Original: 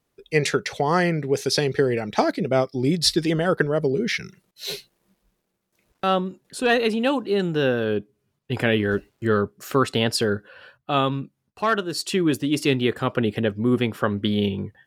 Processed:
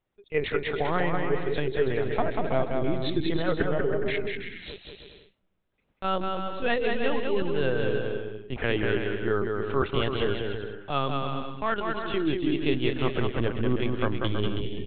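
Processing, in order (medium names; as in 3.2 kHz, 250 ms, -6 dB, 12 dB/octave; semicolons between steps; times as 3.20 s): LPC vocoder at 8 kHz pitch kept; bouncing-ball echo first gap 190 ms, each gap 0.7×, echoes 5; trim -6 dB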